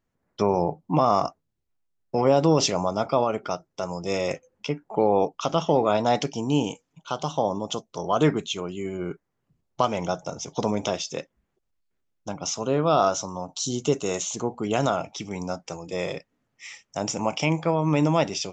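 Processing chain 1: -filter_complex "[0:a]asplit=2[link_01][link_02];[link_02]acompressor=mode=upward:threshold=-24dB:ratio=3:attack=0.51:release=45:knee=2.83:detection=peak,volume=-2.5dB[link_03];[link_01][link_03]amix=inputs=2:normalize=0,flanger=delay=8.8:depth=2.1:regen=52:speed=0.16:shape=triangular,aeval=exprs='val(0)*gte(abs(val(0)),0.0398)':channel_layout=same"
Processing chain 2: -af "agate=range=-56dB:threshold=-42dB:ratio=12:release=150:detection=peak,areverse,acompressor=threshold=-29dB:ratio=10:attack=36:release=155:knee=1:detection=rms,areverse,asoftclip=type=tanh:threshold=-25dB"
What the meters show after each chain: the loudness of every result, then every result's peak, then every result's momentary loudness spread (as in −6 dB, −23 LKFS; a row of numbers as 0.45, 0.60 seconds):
−25.0, −35.0 LKFS; −4.5, −25.0 dBFS; 12, 7 LU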